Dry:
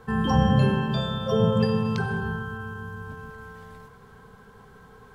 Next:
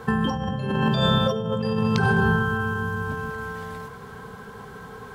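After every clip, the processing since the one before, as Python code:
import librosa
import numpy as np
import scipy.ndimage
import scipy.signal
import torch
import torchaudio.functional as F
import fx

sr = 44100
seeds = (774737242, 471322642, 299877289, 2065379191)

y = fx.highpass(x, sr, hz=92.0, slope=6)
y = fx.over_compress(y, sr, threshold_db=-29.0, ratio=-1.0)
y = F.gain(torch.from_numpy(y), 6.5).numpy()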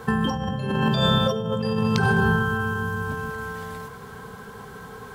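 y = fx.high_shelf(x, sr, hz=5800.0, db=6.0)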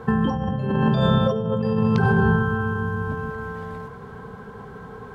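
y = fx.lowpass(x, sr, hz=1000.0, slope=6)
y = F.gain(torch.from_numpy(y), 3.0).numpy()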